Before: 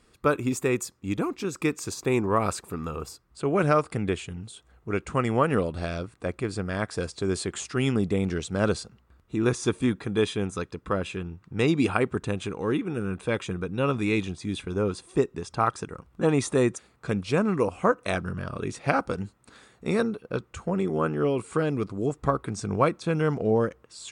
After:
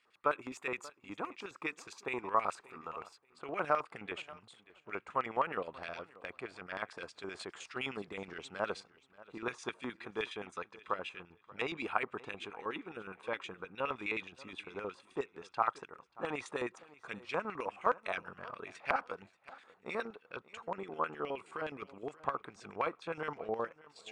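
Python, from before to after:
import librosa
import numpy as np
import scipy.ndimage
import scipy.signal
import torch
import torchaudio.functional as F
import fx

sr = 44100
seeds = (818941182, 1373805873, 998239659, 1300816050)

y = fx.lowpass(x, sr, hz=3300.0, slope=6, at=(5.14, 5.62))
y = fx.filter_lfo_bandpass(y, sr, shape='square', hz=9.6, low_hz=950.0, high_hz=2400.0, q=1.8)
y = fx.echo_feedback(y, sr, ms=583, feedback_pct=20, wet_db=-20.5)
y = F.gain(torch.from_numpy(y), -2.0).numpy()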